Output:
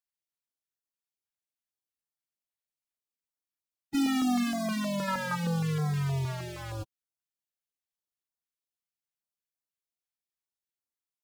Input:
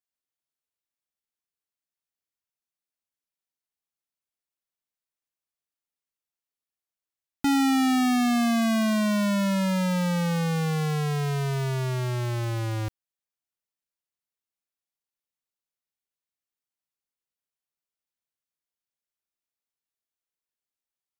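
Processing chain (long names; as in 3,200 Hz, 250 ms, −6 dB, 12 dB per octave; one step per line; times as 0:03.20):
time stretch by phase vocoder 0.53×
gain on a spectral selection 0:05.08–0:05.36, 640–1,800 Hz +11 dB
notch on a step sequencer 6.4 Hz 300–2,800 Hz
level −1 dB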